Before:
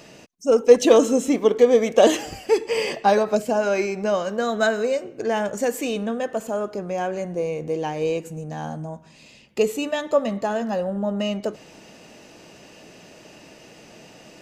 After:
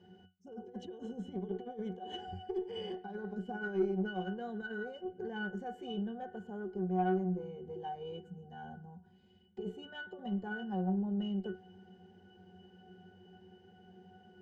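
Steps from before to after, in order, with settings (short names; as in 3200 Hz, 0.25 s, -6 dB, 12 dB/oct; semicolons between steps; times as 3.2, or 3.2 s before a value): negative-ratio compressor -22 dBFS, ratio -1; octave resonator F#, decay 0.23 s; added harmonics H 4 -25 dB, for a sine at -21 dBFS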